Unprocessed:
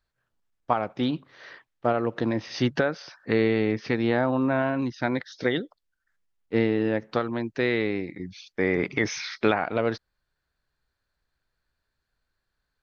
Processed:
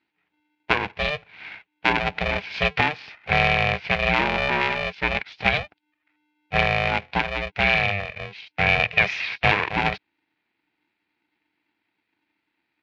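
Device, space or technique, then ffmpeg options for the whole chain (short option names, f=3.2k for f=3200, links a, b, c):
ring modulator pedal into a guitar cabinet: -af "aeval=exprs='val(0)*sgn(sin(2*PI*300*n/s))':c=same,highpass=86,equalizer=f=150:t=q:w=4:g=-5,equalizer=f=250:t=q:w=4:g=-9,equalizer=f=380:t=q:w=4:g=-6,equalizer=f=560:t=q:w=4:g=-7,equalizer=f=1.2k:t=q:w=4:g=-8,equalizer=f=2.4k:t=q:w=4:g=10,lowpass=f=3.8k:w=0.5412,lowpass=f=3.8k:w=1.3066,volume=4.5dB"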